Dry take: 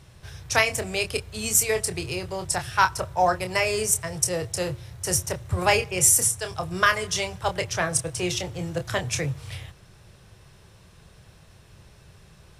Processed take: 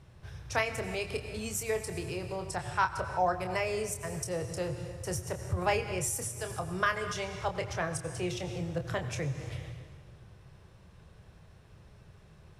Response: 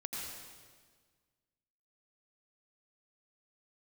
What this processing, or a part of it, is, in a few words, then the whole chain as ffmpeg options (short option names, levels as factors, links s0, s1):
ducked reverb: -filter_complex "[0:a]asettb=1/sr,asplit=3[s0][s1][s2];[s0]atrim=end=2.504[s3];[s1]atrim=start=2.5:end=3.32,asetpts=PTS-STARTPTS,afade=t=in:d=0.004:c=qsin,afade=t=out:st=0.816:d=0.004:c=qsin,lowpass=11000[s4];[s2]atrim=start=3.316[s5];[s3][s4]acrossfade=d=0.004:c1=hsin:c2=qsin[s6];[s6][s5]acrossfade=d=0.004:c1=qsin:c2=hsin,asplit=3[s7][s8][s9];[1:a]atrim=start_sample=2205[s10];[s8][s10]afir=irnorm=-1:irlink=0[s11];[s9]apad=whole_len=555637[s12];[s11][s12]sidechaincompress=threshold=0.0224:ratio=5:attack=46:release=146,volume=0.75[s13];[s7][s13]amix=inputs=2:normalize=0,highshelf=f=2800:g=-10.5,volume=0.422"